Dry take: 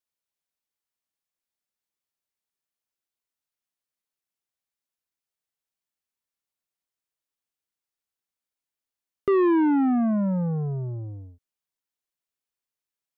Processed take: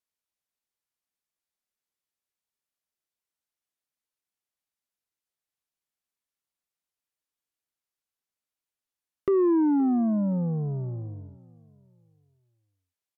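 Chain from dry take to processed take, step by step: low-pass that closes with the level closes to 790 Hz, closed at -25.5 dBFS; feedback delay 521 ms, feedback 38%, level -22 dB; trim -1.5 dB

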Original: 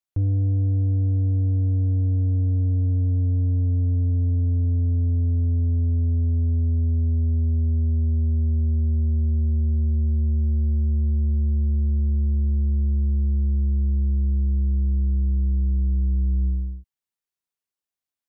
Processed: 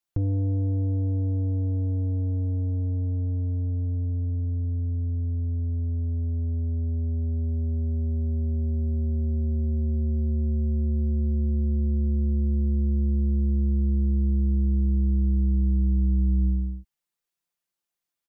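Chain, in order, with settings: comb 5.8 ms, depth 61%; trim +2 dB

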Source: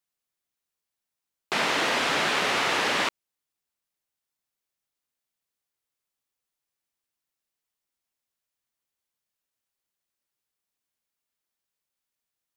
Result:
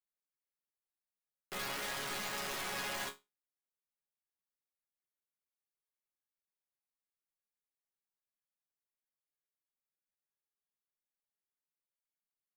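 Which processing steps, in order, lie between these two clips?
high-order bell 4.5 kHz -9.5 dB; integer overflow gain 20.5 dB; chord resonator C#3 sus4, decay 0.22 s

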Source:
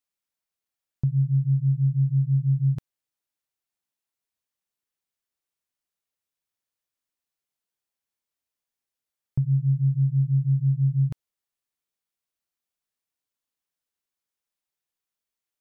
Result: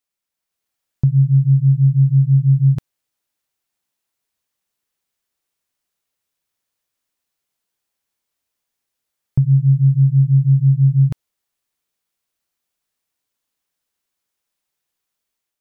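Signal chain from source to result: level rider gain up to 5.5 dB; trim +3.5 dB

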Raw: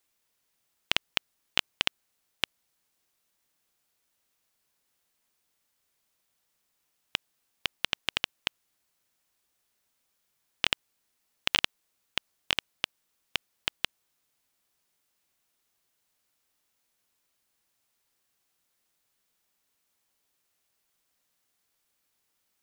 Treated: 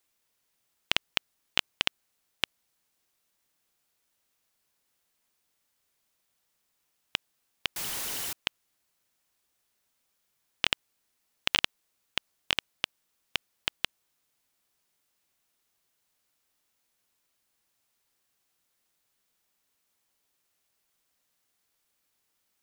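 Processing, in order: 7.76–8.33 s: one-bit comparator

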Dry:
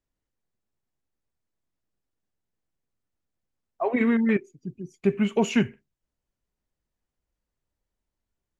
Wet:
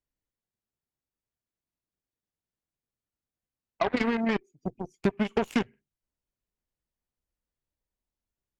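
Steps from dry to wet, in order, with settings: compression 5:1, threshold -31 dBFS, peak gain reduction 14 dB; Chebyshev shaper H 3 -20 dB, 7 -18 dB, 8 -42 dB, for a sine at -21 dBFS; trim +8.5 dB

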